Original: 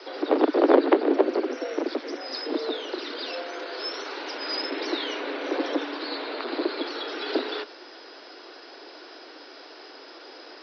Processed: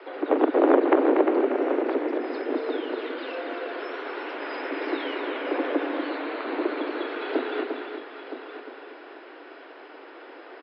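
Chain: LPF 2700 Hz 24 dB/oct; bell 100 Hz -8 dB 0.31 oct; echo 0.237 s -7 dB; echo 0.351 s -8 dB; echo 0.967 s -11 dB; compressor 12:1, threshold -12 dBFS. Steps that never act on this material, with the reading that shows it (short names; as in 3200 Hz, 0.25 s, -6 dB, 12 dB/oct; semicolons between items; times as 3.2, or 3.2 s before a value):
bell 100 Hz: input band starts at 210 Hz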